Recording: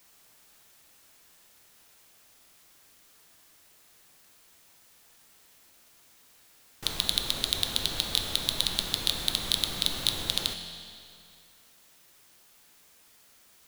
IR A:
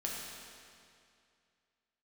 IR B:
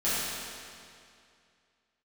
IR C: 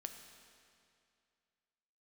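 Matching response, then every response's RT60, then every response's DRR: C; 2.4, 2.4, 2.4 seconds; −3.5, −13.0, 5.5 decibels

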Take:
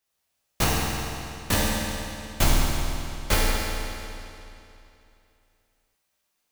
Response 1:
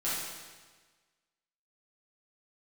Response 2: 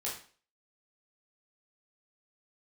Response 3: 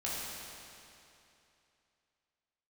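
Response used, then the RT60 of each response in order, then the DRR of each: 3; 1.4, 0.40, 2.8 seconds; −10.5, −5.5, −7.5 decibels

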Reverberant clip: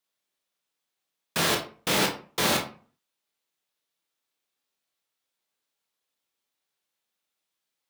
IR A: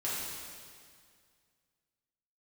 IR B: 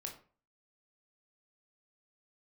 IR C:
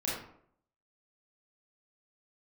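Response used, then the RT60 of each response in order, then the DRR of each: B; 2.1, 0.40, 0.65 seconds; −9.0, 1.0, −7.0 decibels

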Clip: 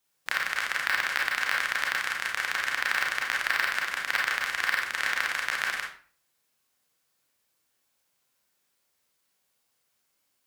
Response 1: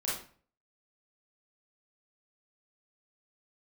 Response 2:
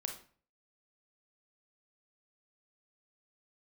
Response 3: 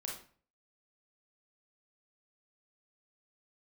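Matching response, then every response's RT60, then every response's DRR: 3; 0.45, 0.45, 0.45 seconds; −7.5, 3.5, −2.0 decibels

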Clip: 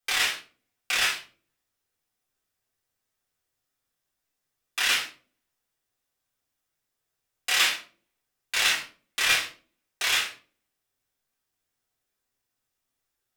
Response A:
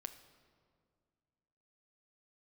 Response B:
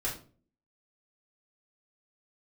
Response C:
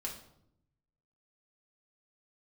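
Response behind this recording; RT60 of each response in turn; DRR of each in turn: B; 2.1, 0.40, 0.75 seconds; 8.5, −6.0, −2.5 decibels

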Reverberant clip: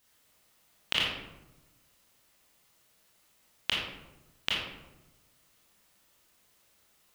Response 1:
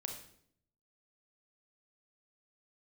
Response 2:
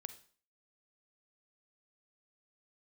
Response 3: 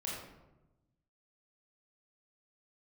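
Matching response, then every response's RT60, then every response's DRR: 3; 0.65, 0.45, 1.0 seconds; 3.0, 11.0, −5.0 decibels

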